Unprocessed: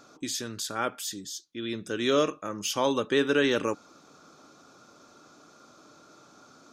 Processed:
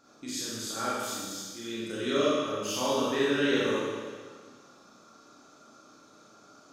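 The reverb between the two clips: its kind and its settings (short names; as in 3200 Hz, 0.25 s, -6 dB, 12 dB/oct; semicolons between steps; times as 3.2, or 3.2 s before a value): Schroeder reverb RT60 1.6 s, combs from 28 ms, DRR -8.5 dB; gain -10 dB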